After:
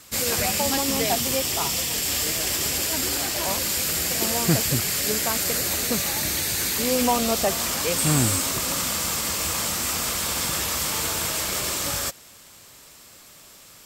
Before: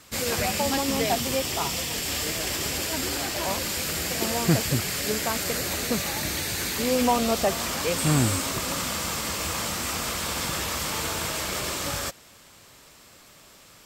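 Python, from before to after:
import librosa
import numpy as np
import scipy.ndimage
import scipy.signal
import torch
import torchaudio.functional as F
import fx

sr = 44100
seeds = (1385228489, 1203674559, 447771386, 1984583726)

y = fx.high_shelf(x, sr, hz=5300.0, db=8.0)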